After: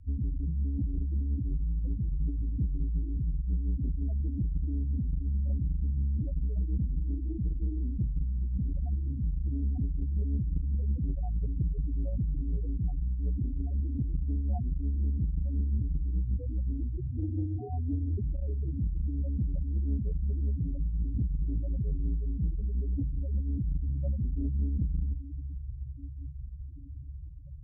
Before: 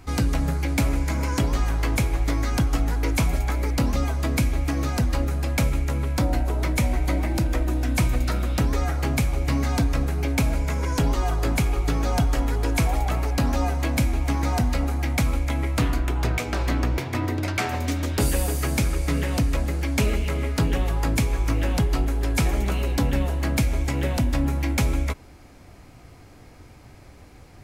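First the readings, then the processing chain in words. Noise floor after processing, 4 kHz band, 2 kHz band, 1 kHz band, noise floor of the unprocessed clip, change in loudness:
-40 dBFS, under -40 dB, under -40 dB, -26.5 dB, -47 dBFS, -8.0 dB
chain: self-modulated delay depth 0.25 ms; steep low-pass 710 Hz 48 dB/octave; in parallel at -2 dB: compression 10:1, threshold -32 dBFS, peak gain reduction 15 dB; on the sum: peak limiter -17.5 dBFS, peak gain reduction 6 dB; on a send: echo that smears into a reverb 839 ms, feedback 69%, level -13 dB; on the sum: loudest bins only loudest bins 4; rotary cabinet horn 6.3 Hz; transformer saturation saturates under 96 Hz; trim -3 dB

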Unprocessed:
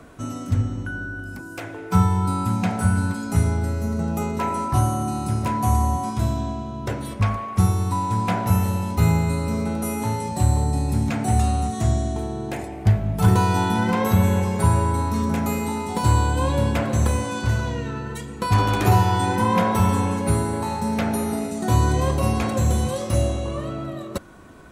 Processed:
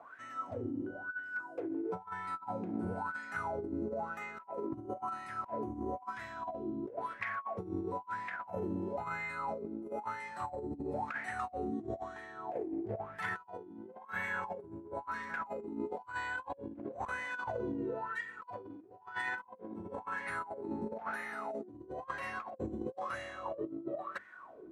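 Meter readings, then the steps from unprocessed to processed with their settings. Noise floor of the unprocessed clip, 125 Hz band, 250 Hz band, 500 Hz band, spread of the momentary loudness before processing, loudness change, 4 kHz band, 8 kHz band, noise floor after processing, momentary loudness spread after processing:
-35 dBFS, -31.0 dB, -17.5 dB, -12.5 dB, 10 LU, -17.5 dB, -22.0 dB, -30.5 dB, -55 dBFS, 7 LU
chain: wah-wah 1 Hz 300–1900 Hz, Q 11; hum notches 50/100/150/200/250/300/350/400/450 Hz; compressor with a negative ratio -44 dBFS, ratio -0.5; trim +4.5 dB

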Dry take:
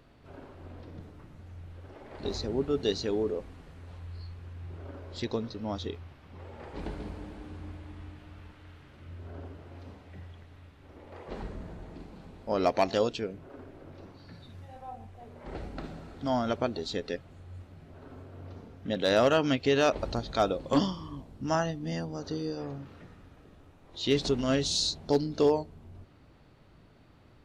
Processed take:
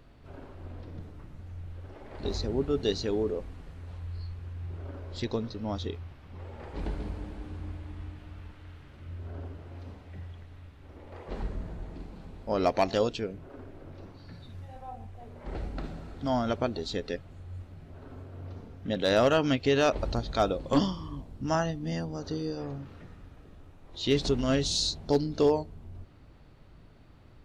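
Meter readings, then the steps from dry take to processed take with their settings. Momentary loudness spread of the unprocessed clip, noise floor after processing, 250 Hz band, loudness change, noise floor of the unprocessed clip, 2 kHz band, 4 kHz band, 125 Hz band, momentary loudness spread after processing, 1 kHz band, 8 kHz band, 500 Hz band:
22 LU, -53 dBFS, +1.0 dB, -0.5 dB, -57 dBFS, 0.0 dB, 0.0 dB, +3.0 dB, 21 LU, 0.0 dB, 0.0 dB, 0.0 dB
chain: bass shelf 73 Hz +10 dB

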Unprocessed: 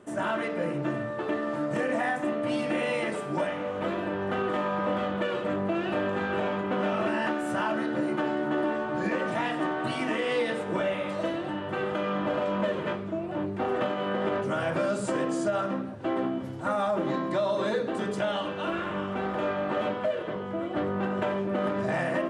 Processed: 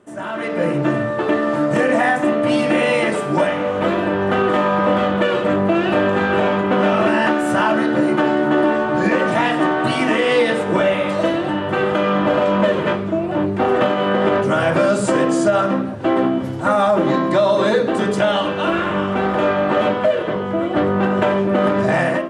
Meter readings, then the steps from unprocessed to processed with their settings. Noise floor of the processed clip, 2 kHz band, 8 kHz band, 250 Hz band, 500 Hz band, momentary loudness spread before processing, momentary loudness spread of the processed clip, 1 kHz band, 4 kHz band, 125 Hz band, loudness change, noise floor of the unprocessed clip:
-24 dBFS, +11.5 dB, +11.5 dB, +12.0 dB, +12.0 dB, 4 LU, 4 LU, +11.5 dB, +12.0 dB, +12.0 dB, +12.0 dB, -35 dBFS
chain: level rider gain up to 12 dB

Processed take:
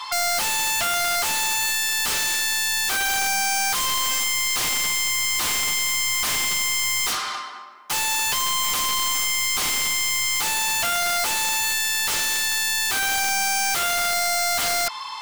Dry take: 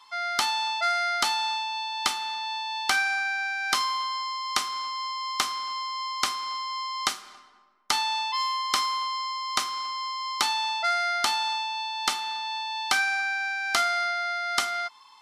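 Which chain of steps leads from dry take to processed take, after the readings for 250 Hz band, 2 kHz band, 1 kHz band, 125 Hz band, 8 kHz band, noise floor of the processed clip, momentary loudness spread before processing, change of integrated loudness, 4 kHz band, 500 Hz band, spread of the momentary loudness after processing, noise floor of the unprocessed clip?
+7.0 dB, +4.5 dB, 0.0 dB, no reading, +14.5 dB, -33 dBFS, 7 LU, +6.5 dB, +5.5 dB, +6.5 dB, 0 LU, -53 dBFS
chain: overdrive pedal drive 35 dB, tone 6.2 kHz, clips at -9 dBFS; integer overflow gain 14.5 dB; trim -6.5 dB

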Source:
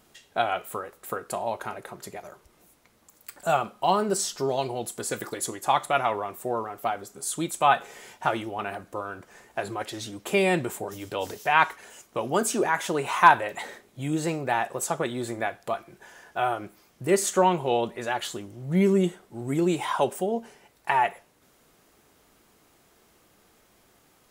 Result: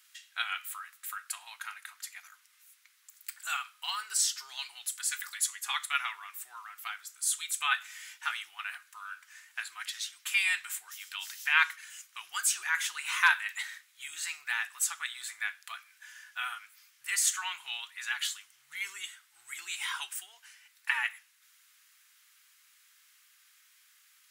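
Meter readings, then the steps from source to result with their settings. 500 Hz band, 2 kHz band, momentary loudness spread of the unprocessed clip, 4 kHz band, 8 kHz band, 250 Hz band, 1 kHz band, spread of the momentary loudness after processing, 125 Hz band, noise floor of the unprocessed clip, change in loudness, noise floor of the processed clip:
under -40 dB, -0.5 dB, 14 LU, +1.5 dB, +1.5 dB, under -40 dB, -14.5 dB, 17 LU, under -40 dB, -62 dBFS, -5.5 dB, -65 dBFS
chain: inverse Chebyshev high-pass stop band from 590 Hz, stop band 50 dB; trim +1.5 dB

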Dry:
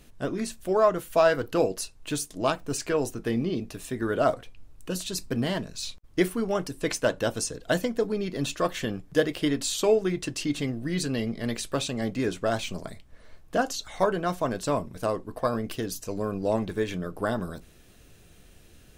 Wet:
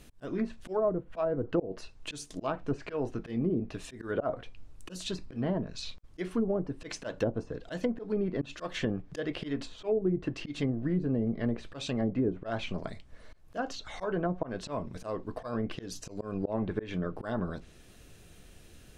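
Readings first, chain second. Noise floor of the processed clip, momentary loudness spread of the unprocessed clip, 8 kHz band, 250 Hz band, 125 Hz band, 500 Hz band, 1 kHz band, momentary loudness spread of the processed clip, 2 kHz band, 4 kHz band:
-54 dBFS, 10 LU, -14.5 dB, -3.0 dB, -2.5 dB, -7.0 dB, -10.0 dB, 11 LU, -9.5 dB, -9.0 dB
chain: slow attack 188 ms; low-pass that closes with the level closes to 470 Hz, closed at -23.5 dBFS

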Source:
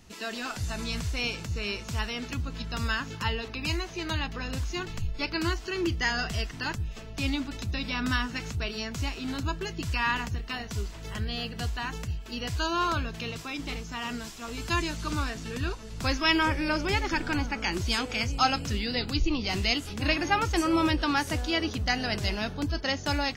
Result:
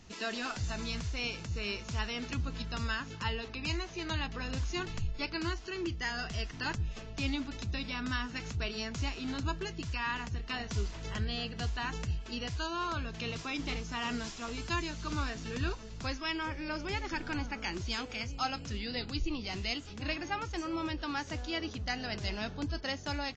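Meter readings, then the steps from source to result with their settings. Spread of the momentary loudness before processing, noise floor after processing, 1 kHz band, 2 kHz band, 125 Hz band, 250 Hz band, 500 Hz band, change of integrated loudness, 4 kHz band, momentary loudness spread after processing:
9 LU, -46 dBFS, -7.5 dB, -7.0 dB, -5.0 dB, -7.0 dB, -6.5 dB, -6.5 dB, -6.5 dB, 3 LU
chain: gain riding 0.5 s; resampled via 16 kHz; trim -6.5 dB

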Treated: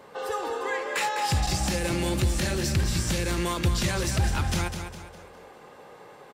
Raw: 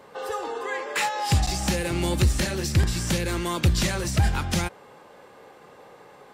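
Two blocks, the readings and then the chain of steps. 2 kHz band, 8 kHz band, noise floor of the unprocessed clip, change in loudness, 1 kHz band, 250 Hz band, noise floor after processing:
-1.0 dB, -1.0 dB, -50 dBFS, -2.0 dB, -0.5 dB, -2.0 dB, -49 dBFS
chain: peak limiter -17.5 dBFS, peak gain reduction 5.5 dB; feedback delay 204 ms, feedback 40%, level -8 dB

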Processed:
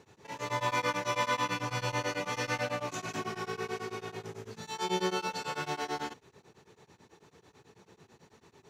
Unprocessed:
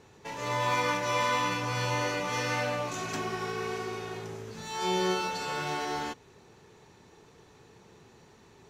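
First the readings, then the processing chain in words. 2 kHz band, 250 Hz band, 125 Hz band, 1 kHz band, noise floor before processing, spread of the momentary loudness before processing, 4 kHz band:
-3.0 dB, -3.0 dB, -3.5 dB, -3.0 dB, -57 dBFS, 11 LU, -3.0 dB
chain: high-pass 79 Hz; tremolo of two beating tones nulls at 9.1 Hz

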